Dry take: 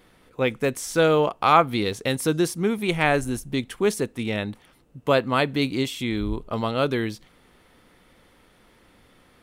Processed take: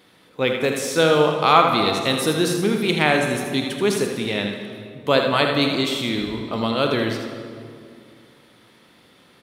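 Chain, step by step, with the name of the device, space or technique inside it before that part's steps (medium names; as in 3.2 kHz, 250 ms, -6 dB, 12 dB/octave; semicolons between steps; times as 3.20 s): PA in a hall (high-pass 120 Hz 12 dB/octave; peaking EQ 3.9 kHz +6.5 dB 0.85 oct; delay 80 ms -7.5 dB; reverberation RT60 2.3 s, pre-delay 30 ms, DRR 4.5 dB); trim +1 dB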